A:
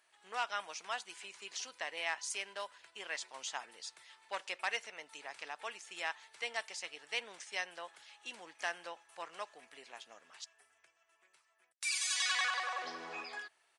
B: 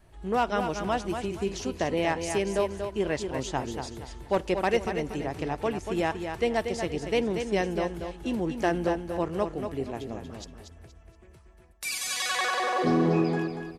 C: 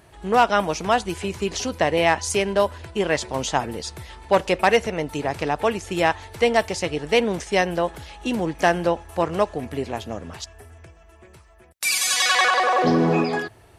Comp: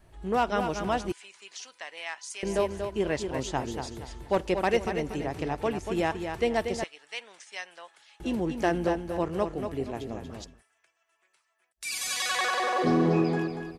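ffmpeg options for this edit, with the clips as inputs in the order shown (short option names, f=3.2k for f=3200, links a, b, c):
-filter_complex "[0:a]asplit=3[a][b][c];[1:a]asplit=4[d][e][f][g];[d]atrim=end=1.122[h];[a]atrim=start=1.118:end=2.432[i];[e]atrim=start=2.428:end=6.842[j];[b]atrim=start=6.838:end=8.202[k];[f]atrim=start=8.198:end=10.63[l];[c]atrim=start=10.39:end=12[m];[g]atrim=start=11.76[n];[h][i]acrossfade=d=0.004:c1=hsin:c2=hsin[o];[o][j]acrossfade=d=0.004:c1=hsin:c2=hsin[p];[p][k]acrossfade=d=0.004:c1=hsin:c2=hsin[q];[q][l]acrossfade=d=0.004:c1=hsin:c2=hsin[r];[r][m]acrossfade=d=0.24:c1=tri:c2=tri[s];[s][n]acrossfade=d=0.24:c1=tri:c2=tri"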